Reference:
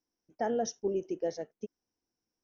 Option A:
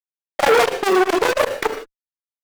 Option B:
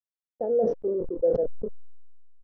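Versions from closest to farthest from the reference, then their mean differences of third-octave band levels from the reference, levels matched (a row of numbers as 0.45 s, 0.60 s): B, A; 7.5 dB, 16.5 dB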